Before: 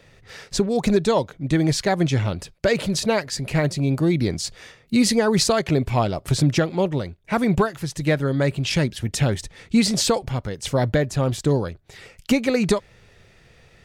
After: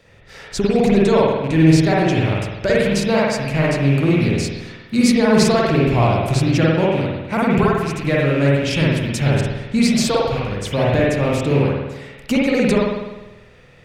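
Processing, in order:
loose part that buzzes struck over −26 dBFS, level −23 dBFS
spring reverb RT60 1.1 s, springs 50 ms, chirp 80 ms, DRR −5 dB
level −1.5 dB

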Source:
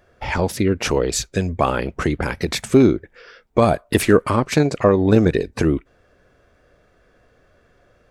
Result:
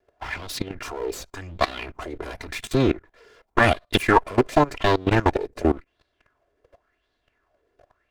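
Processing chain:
lower of the sound and its delayed copy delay 2.9 ms
output level in coarse steps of 19 dB
auto-filter bell 0.91 Hz 430–4,100 Hz +14 dB
level +1 dB

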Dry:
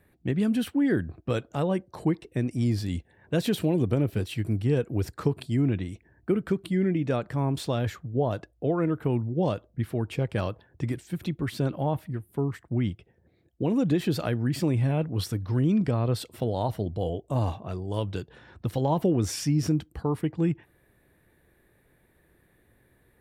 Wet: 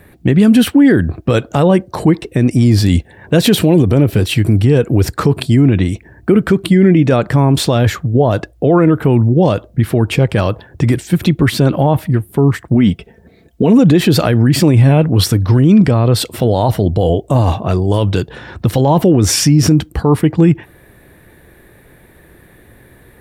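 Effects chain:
0:12.74–0:13.79: comb filter 4.5 ms, depth 56%
boost into a limiter +20.5 dB
level −1 dB

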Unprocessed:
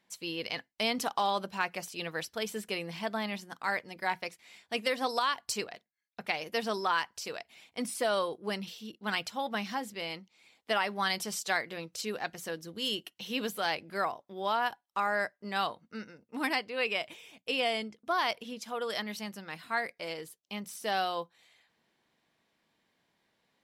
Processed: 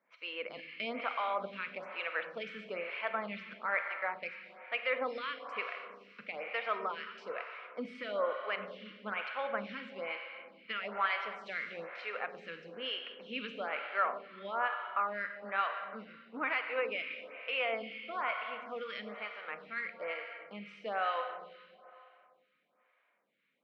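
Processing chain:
brickwall limiter −22.5 dBFS, peak gain reduction 7.5 dB
loudspeaker in its box 280–3,000 Hz, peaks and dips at 360 Hz −8 dB, 540 Hz +5 dB, 810 Hz −5 dB, 1,300 Hz +9 dB, 2,300 Hz +9 dB
four-comb reverb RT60 2.5 s, combs from 31 ms, DRR 6 dB
phaser with staggered stages 1.1 Hz
level −1 dB

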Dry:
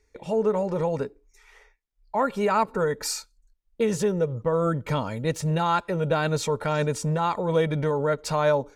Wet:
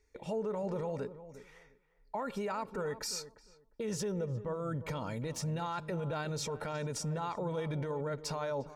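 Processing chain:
dynamic equaliser 5,400 Hz, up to +7 dB, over −54 dBFS, Q 4.3
brickwall limiter −23 dBFS, peak gain reduction 12 dB
feedback echo with a low-pass in the loop 353 ms, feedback 18%, low-pass 1,200 Hz, level −13 dB
level −5.5 dB

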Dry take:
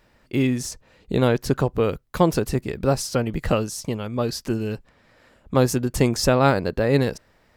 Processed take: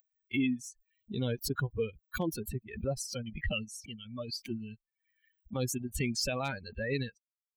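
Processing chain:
spectral dynamics exaggerated over time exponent 3
parametric band 2,700 Hz +6.5 dB 1.2 octaves, from 0:03.26 +15 dB
hard clipping −8 dBFS, distortion −29 dB
brickwall limiter −17.5 dBFS, peak gain reduction 9.5 dB
dynamic equaliser 1,300 Hz, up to −7 dB, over −45 dBFS, Q 1.1
background raised ahead of every attack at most 91 dB per second
level −4 dB

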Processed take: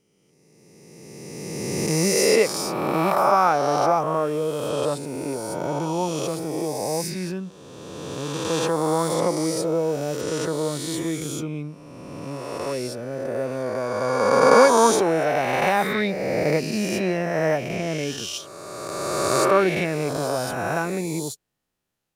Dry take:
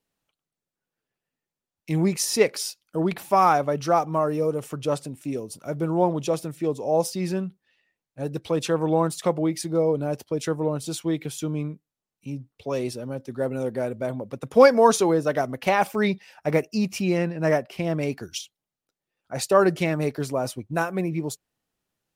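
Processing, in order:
peak hold with a rise ahead of every peak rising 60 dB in 2.41 s
0:05.79–0:08.49: parametric band 590 Hz −6.5 dB 0.81 octaves
level −3 dB

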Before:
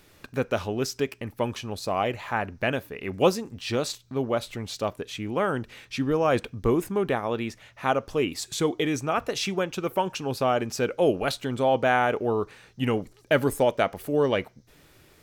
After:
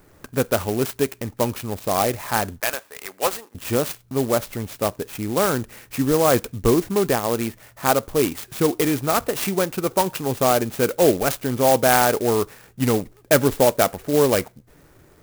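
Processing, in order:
low-pass that shuts in the quiet parts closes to 1,900 Hz, open at −17.5 dBFS
0:02.60–0:03.55: high-pass filter 840 Hz 12 dB per octave
converter with an unsteady clock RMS 0.076 ms
level +5.5 dB

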